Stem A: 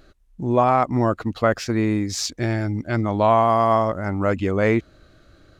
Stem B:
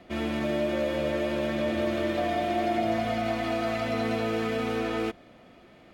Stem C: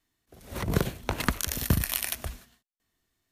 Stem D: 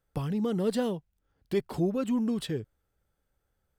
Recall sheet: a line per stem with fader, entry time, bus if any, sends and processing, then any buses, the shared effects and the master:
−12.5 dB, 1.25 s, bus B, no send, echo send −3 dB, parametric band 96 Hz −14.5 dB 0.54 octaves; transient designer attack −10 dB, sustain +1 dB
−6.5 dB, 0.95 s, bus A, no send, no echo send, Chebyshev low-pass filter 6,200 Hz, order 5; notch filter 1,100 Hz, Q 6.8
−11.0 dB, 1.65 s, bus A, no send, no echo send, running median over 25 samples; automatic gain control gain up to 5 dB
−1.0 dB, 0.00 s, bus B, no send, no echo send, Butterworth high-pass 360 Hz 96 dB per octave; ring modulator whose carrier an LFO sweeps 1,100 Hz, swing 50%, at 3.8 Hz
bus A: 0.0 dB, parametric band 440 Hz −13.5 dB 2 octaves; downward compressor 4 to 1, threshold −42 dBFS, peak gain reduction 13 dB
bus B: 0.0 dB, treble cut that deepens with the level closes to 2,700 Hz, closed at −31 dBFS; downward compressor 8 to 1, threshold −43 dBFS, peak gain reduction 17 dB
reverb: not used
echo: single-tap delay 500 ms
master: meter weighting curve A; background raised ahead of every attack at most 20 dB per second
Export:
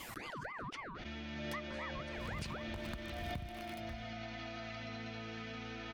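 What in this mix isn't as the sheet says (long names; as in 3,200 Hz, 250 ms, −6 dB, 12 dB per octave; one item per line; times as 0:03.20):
stem A: muted
master: missing meter weighting curve A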